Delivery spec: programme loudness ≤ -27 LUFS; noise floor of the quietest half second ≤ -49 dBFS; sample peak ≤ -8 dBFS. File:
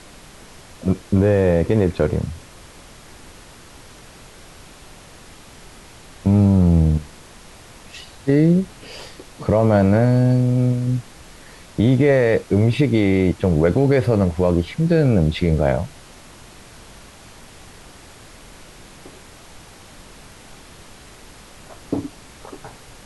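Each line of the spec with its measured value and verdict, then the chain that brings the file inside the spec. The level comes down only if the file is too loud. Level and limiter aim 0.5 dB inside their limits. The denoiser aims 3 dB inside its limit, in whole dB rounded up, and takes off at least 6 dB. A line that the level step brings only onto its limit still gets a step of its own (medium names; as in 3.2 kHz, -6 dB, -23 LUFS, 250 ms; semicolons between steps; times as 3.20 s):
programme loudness -18.0 LUFS: fail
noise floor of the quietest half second -43 dBFS: fail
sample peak -5.5 dBFS: fail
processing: trim -9.5 dB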